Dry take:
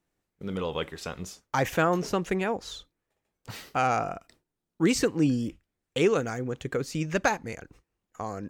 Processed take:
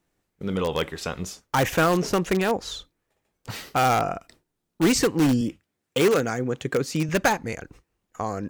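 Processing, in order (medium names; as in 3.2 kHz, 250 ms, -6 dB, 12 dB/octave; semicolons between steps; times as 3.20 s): in parallel at -8.5 dB: integer overflow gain 19.5 dB; 5.41–7.09 s: on the sum: high-pass 110 Hz; trim +3 dB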